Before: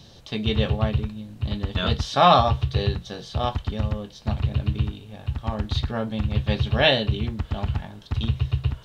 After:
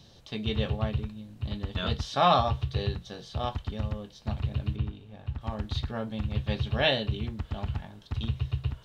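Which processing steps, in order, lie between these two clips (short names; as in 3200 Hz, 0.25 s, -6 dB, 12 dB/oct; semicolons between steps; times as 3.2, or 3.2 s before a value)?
4.75–5.4 high shelf 4000 Hz -> 5200 Hz -12 dB; gain -6.5 dB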